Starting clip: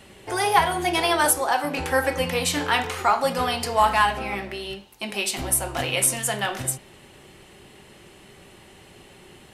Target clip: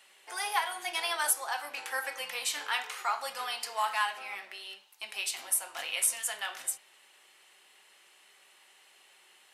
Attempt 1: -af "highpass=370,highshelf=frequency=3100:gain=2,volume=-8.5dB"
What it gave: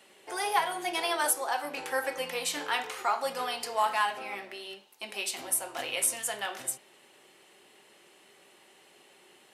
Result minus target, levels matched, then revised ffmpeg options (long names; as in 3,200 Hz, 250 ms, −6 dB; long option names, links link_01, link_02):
500 Hz band +7.5 dB
-af "highpass=990,highshelf=frequency=3100:gain=2,volume=-8.5dB"